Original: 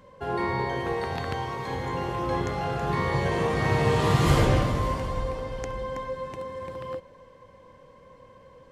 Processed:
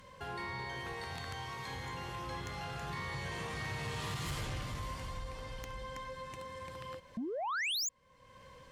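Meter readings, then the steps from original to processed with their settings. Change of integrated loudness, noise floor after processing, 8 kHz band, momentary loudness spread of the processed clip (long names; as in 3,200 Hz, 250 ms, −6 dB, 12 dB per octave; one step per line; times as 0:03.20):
−12.5 dB, −59 dBFS, −1.0 dB, 11 LU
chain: sound drawn into the spectrogram rise, 0:07.17–0:07.89, 210–7,400 Hz −18 dBFS
guitar amp tone stack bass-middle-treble 5-5-5
downward compressor 2 to 1, threshold −59 dBFS, peak gain reduction 18.5 dB
sine wavefolder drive 8 dB, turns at −34 dBFS
level +1 dB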